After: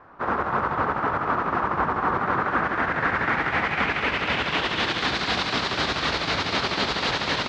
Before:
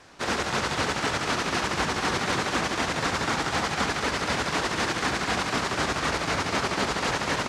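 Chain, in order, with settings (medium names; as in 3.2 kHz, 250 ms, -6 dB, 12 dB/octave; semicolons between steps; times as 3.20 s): low-pass sweep 1.2 kHz -> 4 kHz, 2.15–5.20 s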